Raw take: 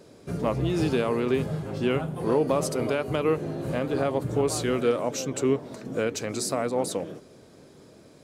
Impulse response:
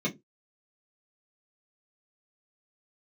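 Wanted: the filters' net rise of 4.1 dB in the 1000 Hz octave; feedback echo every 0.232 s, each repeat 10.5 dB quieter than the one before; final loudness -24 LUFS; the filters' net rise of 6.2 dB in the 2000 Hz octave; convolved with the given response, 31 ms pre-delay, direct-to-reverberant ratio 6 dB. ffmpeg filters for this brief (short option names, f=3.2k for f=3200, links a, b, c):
-filter_complex "[0:a]equalizer=f=1k:t=o:g=3.5,equalizer=f=2k:t=o:g=7,aecho=1:1:232|464|696:0.299|0.0896|0.0269,asplit=2[a][b];[1:a]atrim=start_sample=2205,adelay=31[c];[b][c]afir=irnorm=-1:irlink=0,volume=-13.5dB[d];[a][d]amix=inputs=2:normalize=0,volume=-1.5dB"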